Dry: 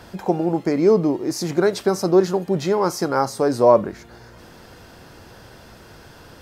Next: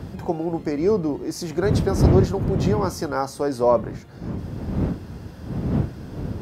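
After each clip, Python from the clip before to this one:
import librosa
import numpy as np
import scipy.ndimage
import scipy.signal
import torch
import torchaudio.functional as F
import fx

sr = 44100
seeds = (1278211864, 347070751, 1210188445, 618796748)

y = fx.dmg_wind(x, sr, seeds[0], corner_hz=170.0, level_db=-19.0)
y = scipy.signal.sosfilt(scipy.signal.butter(2, 65.0, 'highpass', fs=sr, output='sos'), y)
y = y * librosa.db_to_amplitude(-4.5)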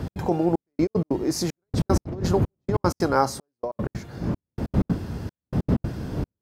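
y = fx.over_compress(x, sr, threshold_db=-21.0, ratio=-0.5)
y = fx.step_gate(y, sr, bpm=190, pattern='x.xxxxx...x.', floor_db=-60.0, edge_ms=4.5)
y = y * librosa.db_to_amplitude(2.0)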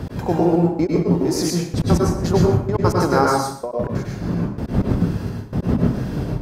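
y = x + 10.0 ** (-14.5 / 20.0) * np.pad(x, (int(122 * sr / 1000.0), 0))[:len(x)]
y = fx.rev_plate(y, sr, seeds[1], rt60_s=0.52, hf_ratio=0.75, predelay_ms=90, drr_db=-2.0)
y = y * librosa.db_to_amplitude(2.0)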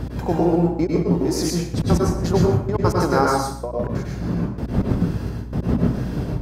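y = fx.add_hum(x, sr, base_hz=60, snr_db=13)
y = y * librosa.db_to_amplitude(-1.5)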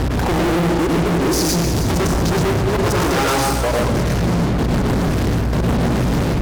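y = fx.fuzz(x, sr, gain_db=38.0, gate_db=-40.0)
y = y + 10.0 ** (-10.5 / 20.0) * np.pad(y, (int(316 * sr / 1000.0), 0))[:len(y)]
y = y * librosa.db_to_amplitude(-3.0)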